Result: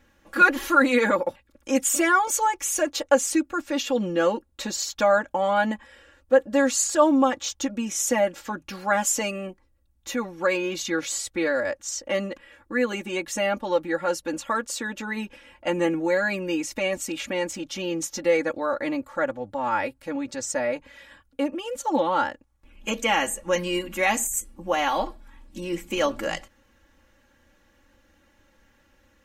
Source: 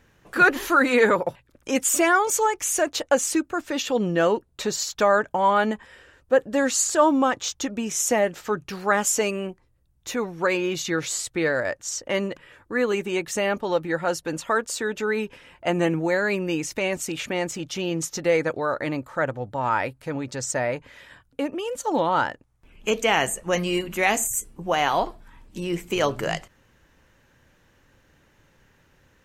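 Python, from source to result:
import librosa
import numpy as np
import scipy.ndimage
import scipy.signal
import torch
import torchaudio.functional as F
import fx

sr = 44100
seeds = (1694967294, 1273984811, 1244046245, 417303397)

y = x + 0.93 * np.pad(x, (int(3.6 * sr / 1000.0), 0))[:len(x)]
y = y * 10.0 ** (-4.0 / 20.0)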